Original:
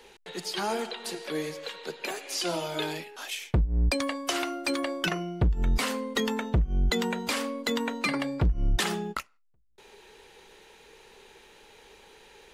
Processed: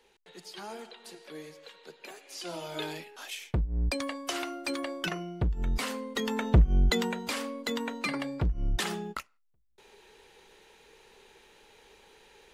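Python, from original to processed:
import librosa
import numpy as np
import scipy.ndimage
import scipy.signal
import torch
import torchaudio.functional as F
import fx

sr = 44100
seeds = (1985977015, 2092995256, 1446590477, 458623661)

y = fx.gain(x, sr, db=fx.line((2.29, -12.0), (2.78, -4.5), (6.21, -4.5), (6.6, 5.0), (7.2, -4.0)))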